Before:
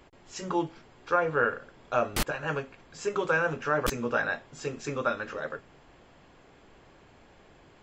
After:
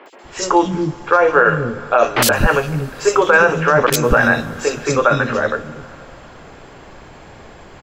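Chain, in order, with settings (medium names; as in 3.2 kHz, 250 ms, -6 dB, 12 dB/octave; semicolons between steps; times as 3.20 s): three bands offset in time mids, highs, lows 60/240 ms, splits 300/2900 Hz; on a send at -19 dB: reverberation RT60 3.4 s, pre-delay 100 ms; on the sum: loudness maximiser +18.5 dB; trim -1 dB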